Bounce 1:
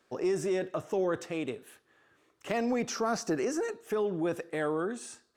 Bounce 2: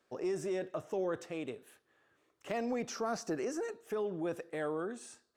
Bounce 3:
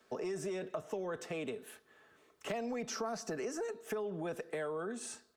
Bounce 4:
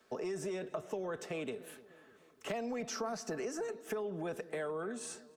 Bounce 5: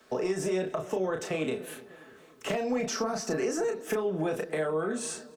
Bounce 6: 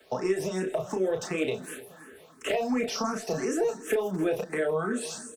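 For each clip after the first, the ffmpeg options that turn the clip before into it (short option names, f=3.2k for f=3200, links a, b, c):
-af "equalizer=f=590:w=1.7:g=2.5,volume=-6.5dB"
-filter_complex "[0:a]aecho=1:1:4.6:0.4,acrossover=split=220|390|1900[a][b][c][d];[b]alimiter=level_in=21dB:limit=-24dB:level=0:latency=1,volume=-21dB[e];[a][e][c][d]amix=inputs=4:normalize=0,acompressor=threshold=-44dB:ratio=4,volume=7dB"
-filter_complex "[0:a]asplit=2[a][b];[b]adelay=299,lowpass=f=1.9k:p=1,volume=-17.5dB,asplit=2[c][d];[d]adelay=299,lowpass=f=1.9k:p=1,volume=0.51,asplit=2[e][f];[f]adelay=299,lowpass=f=1.9k:p=1,volume=0.51,asplit=2[g][h];[h]adelay=299,lowpass=f=1.9k:p=1,volume=0.51[i];[a][c][e][g][i]amix=inputs=5:normalize=0"
-filter_complex "[0:a]asplit=2[a][b];[b]adelay=32,volume=-4.5dB[c];[a][c]amix=inputs=2:normalize=0,acrossover=split=470[d][e];[e]acompressor=threshold=-39dB:ratio=2.5[f];[d][f]amix=inputs=2:normalize=0,volume=8dB"
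-filter_complex "[0:a]acrossover=split=120|6100[a][b][c];[a]aeval=exprs='(mod(200*val(0)+1,2)-1)/200':c=same[d];[c]aecho=1:1:162|324|486|648|810|972:0.355|0.192|0.103|0.0559|0.0302|0.0163[e];[d][b][e]amix=inputs=3:normalize=0,asplit=2[f][g];[g]afreqshift=2.8[h];[f][h]amix=inputs=2:normalize=1,volume=4.5dB"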